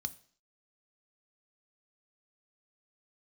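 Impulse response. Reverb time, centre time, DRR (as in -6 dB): 0.50 s, 2 ms, 11.5 dB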